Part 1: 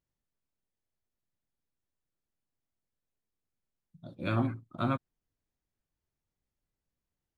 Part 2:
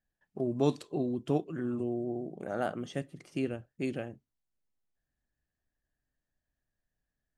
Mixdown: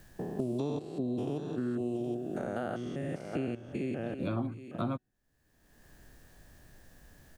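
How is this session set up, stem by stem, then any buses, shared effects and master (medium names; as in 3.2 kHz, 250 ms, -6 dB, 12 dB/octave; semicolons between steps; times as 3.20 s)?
-1.0 dB, 0.00 s, no send, no echo send, peaking EQ 1.8 kHz -11.5 dB 1.2 oct
0.0 dB, 0.00 s, no send, echo send -13.5 dB, spectrogram pixelated in time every 200 ms; de-hum 372.5 Hz, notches 38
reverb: none
echo: delay 768 ms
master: three bands compressed up and down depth 100%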